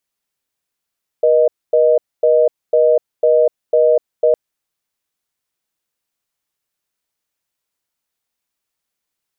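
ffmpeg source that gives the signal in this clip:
-f lavfi -i "aevalsrc='0.266*(sin(2*PI*480*t)+sin(2*PI*620*t))*clip(min(mod(t,0.5),0.25-mod(t,0.5))/0.005,0,1)':d=3.11:s=44100"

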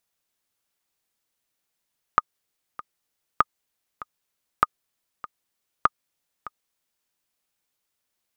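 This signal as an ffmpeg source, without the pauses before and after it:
-f lavfi -i "aevalsrc='pow(10,(-3-18*gte(mod(t,2*60/98),60/98))/20)*sin(2*PI*1230*mod(t,60/98))*exp(-6.91*mod(t,60/98)/0.03)':d=4.89:s=44100"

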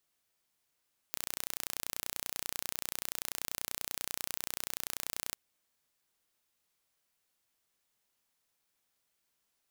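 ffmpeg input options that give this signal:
-f lavfi -i "aevalsrc='0.376*eq(mod(n,1455),0)':d=4.2:s=44100"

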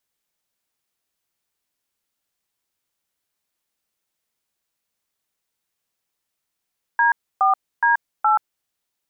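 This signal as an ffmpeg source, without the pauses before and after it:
-f lavfi -i "aevalsrc='0.158*clip(min(mod(t,0.418),0.13-mod(t,0.418))/0.002,0,1)*(eq(floor(t/0.418),0)*(sin(2*PI*941*mod(t,0.418))+sin(2*PI*1633*mod(t,0.418)))+eq(floor(t/0.418),1)*(sin(2*PI*770*mod(t,0.418))+sin(2*PI*1209*mod(t,0.418)))+eq(floor(t/0.418),2)*(sin(2*PI*941*mod(t,0.418))+sin(2*PI*1633*mod(t,0.418)))+eq(floor(t/0.418),3)*(sin(2*PI*852*mod(t,0.418))+sin(2*PI*1336*mod(t,0.418))))':d=1.672:s=44100"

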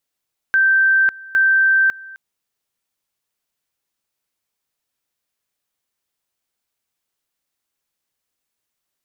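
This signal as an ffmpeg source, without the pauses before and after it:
-f lavfi -i "aevalsrc='pow(10,(-11-22.5*gte(mod(t,0.81),0.55))/20)*sin(2*PI*1560*t)':d=1.62:s=44100"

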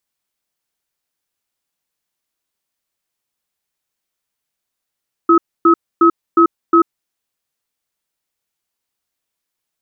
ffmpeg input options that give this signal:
-f lavfi -i "aevalsrc='0.355*(sin(2*PI*336*t)+sin(2*PI*1280*t))*clip(min(mod(t,0.36),0.09-mod(t,0.36))/0.005,0,1)':d=1.74:s=44100"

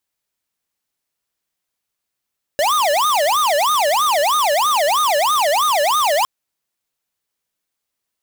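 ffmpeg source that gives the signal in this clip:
-f lavfi -i "aevalsrc='0.158*(2*lt(mod((905*t-335/(2*PI*3.1)*sin(2*PI*3.1*t)),1),0.5)-1)':d=3.66:s=44100"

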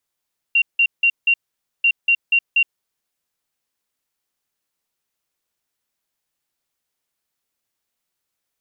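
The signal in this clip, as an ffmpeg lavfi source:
-f lavfi -i "aevalsrc='0.266*sin(2*PI*2760*t)*clip(min(mod(mod(t,1.29),0.24),0.07-mod(mod(t,1.29),0.24))/0.005,0,1)*lt(mod(t,1.29),0.96)':d=2.58:s=44100"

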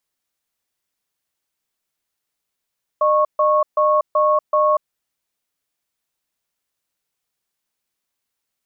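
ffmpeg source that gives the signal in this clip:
-f lavfi -i "aevalsrc='0.168*(sin(2*PI*608*t)+sin(2*PI*1100*t))*clip(min(mod(t,0.38),0.24-mod(t,0.38))/0.005,0,1)':d=1.76:s=44100"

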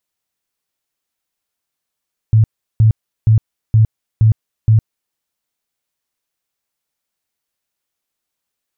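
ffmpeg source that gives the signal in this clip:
-f lavfi -i "aevalsrc='0.501*sin(2*PI*110*mod(t,0.47))*lt(mod(t,0.47),12/110)':d=2.82:s=44100"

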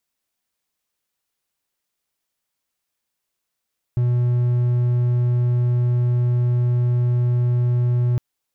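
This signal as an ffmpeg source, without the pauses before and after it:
-f lavfi -i "aevalsrc='0.211*(1-4*abs(mod(122*t+0.25,1)-0.5))':d=4.21:s=44100"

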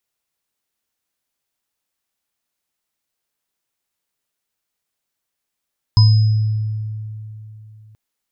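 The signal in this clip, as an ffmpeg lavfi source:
-f lavfi -i "aevalsrc='0.501*pow(10,-3*t/3.22)*sin(2*PI*108*t)+0.0668*pow(10,-3*t/0.27)*sin(2*PI*994*t)+0.15*pow(10,-3*t/0.95)*sin(2*PI*5070*t)':d=1.98:s=44100"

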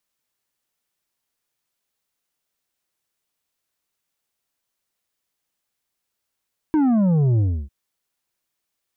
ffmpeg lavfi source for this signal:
-f lavfi -i "aevalsrc='0.168*clip((0.95-t)/0.3,0,1)*tanh(2.24*sin(2*PI*320*0.95/log(65/320)*(exp(log(65/320)*t/0.95)-1)))/tanh(2.24)':d=0.95:s=44100"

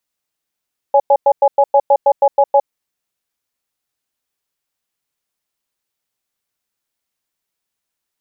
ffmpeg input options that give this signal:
-f lavfi -i "aevalsrc='0.335*(sin(2*PI*562*t)+sin(2*PI*834*t))*clip(min(mod(t,0.16),0.06-mod(t,0.16))/0.005,0,1)':d=1.75:s=44100"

